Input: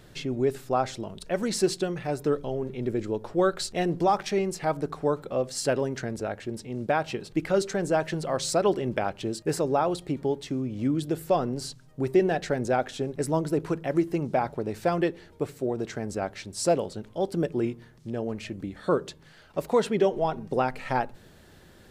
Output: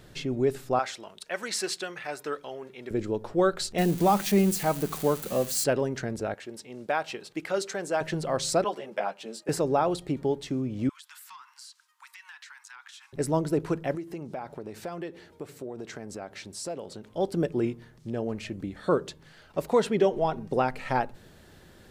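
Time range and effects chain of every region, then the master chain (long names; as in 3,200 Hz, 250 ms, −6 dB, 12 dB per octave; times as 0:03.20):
0:00.79–0:02.91: high-pass filter 1,200 Hz 6 dB per octave + dynamic equaliser 1,700 Hz, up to +6 dB, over −51 dBFS, Q 0.81
0:03.78–0:05.64: spike at every zero crossing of −25.5 dBFS + parametric band 200 Hz +11 dB 0.31 octaves + notch filter 5,300 Hz, Q 16
0:06.34–0:08.01: high-pass filter 190 Hz 6 dB per octave + low-shelf EQ 390 Hz −10 dB
0:08.64–0:09.49: Butterworth high-pass 160 Hz + low shelf with overshoot 440 Hz −8 dB, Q 1.5 + string-ensemble chorus
0:10.89–0:13.13: Butterworth high-pass 930 Hz 96 dB per octave + downward compressor, threshold −44 dBFS + highs frequency-modulated by the lows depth 0.12 ms
0:13.95–0:17.14: high-pass filter 150 Hz 6 dB per octave + downward compressor 2.5 to 1, threshold −37 dBFS
whole clip: no processing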